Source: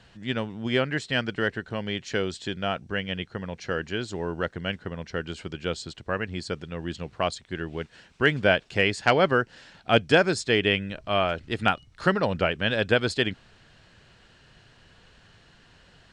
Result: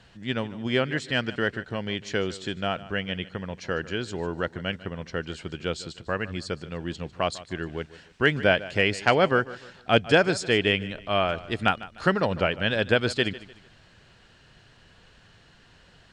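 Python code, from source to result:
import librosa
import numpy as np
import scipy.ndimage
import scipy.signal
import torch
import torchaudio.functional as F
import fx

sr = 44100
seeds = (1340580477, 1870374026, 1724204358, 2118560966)

y = fx.echo_feedback(x, sr, ms=150, feedback_pct=35, wet_db=-17.5)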